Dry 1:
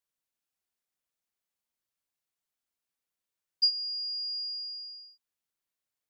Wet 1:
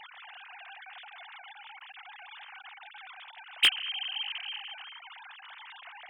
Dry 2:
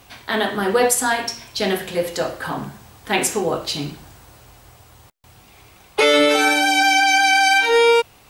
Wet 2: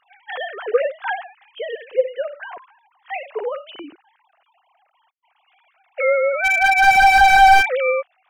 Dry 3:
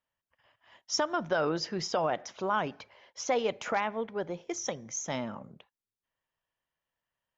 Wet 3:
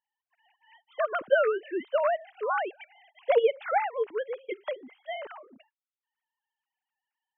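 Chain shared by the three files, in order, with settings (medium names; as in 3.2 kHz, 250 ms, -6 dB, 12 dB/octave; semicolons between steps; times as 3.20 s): formants replaced by sine waves; slew-rate limiter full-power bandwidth 270 Hz; trim +3.5 dB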